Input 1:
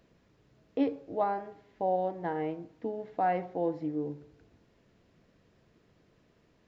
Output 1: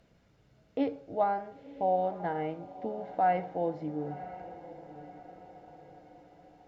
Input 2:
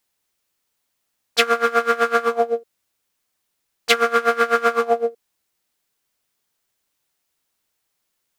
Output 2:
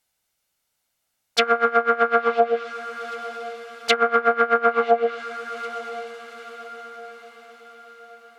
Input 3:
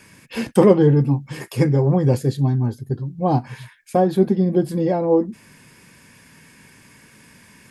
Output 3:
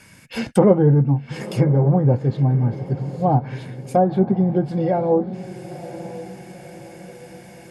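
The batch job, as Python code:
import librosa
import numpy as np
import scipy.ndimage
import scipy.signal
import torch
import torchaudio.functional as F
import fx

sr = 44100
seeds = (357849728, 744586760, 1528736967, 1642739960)

y = x + 0.34 * np.pad(x, (int(1.4 * sr / 1000.0), 0))[:len(x)]
y = fx.echo_diffused(y, sr, ms=1000, feedback_pct=48, wet_db=-14.5)
y = fx.env_lowpass_down(y, sr, base_hz=1300.0, full_db=-12.5)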